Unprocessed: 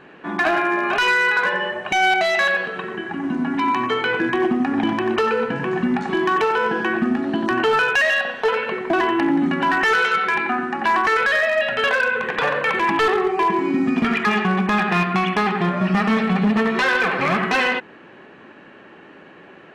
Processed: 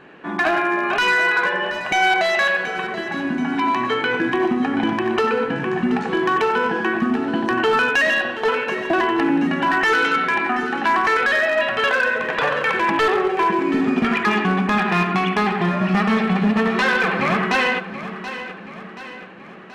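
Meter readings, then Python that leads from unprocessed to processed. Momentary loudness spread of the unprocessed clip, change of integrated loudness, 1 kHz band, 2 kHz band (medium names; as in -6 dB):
5 LU, +0.5 dB, +0.5 dB, +0.5 dB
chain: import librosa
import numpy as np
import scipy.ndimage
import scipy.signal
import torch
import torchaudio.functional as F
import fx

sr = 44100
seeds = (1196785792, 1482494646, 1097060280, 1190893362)

y = fx.echo_feedback(x, sr, ms=729, feedback_pct=51, wet_db=-12.5)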